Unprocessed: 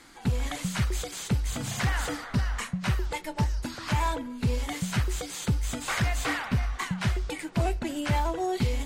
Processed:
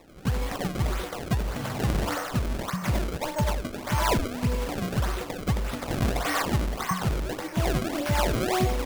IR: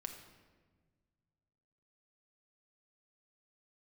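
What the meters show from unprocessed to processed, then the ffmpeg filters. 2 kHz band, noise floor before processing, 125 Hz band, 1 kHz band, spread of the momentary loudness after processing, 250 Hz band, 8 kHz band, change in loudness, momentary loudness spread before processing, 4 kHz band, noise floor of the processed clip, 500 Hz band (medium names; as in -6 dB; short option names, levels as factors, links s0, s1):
0.0 dB, -42 dBFS, +0.5 dB, +3.0 dB, 6 LU, +2.0 dB, -0.5 dB, +1.5 dB, 4 LU, +1.0 dB, -38 dBFS, +5.5 dB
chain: -filter_complex "[0:a]asplit=2[s0][s1];[s1]highpass=410,equalizer=f=590:t=q:w=4:g=8,equalizer=f=1100:t=q:w=4:g=7,equalizer=f=2200:t=q:w=4:g=-8,lowpass=f=2600:w=0.5412,lowpass=f=2600:w=1.3066[s2];[1:a]atrim=start_sample=2205,adelay=91[s3];[s2][s3]afir=irnorm=-1:irlink=0,volume=1.58[s4];[s0][s4]amix=inputs=2:normalize=0,acrusher=samples=28:mix=1:aa=0.000001:lfo=1:lforange=44.8:lforate=1.7"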